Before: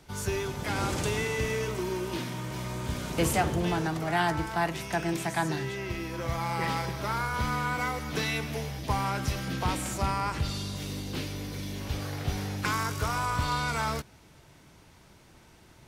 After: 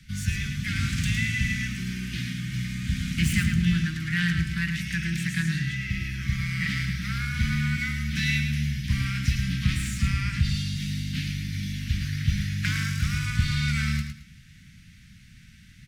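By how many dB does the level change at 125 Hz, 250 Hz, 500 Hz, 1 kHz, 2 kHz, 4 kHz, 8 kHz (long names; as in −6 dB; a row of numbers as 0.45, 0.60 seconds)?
+7.5 dB, +4.5 dB, below −25 dB, −15.0 dB, +4.5 dB, +4.0 dB, +0.5 dB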